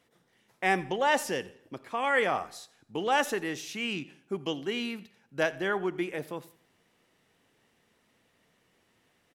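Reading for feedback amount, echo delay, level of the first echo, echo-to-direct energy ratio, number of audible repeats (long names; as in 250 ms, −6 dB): 38%, 87 ms, −21.0 dB, −20.5 dB, 2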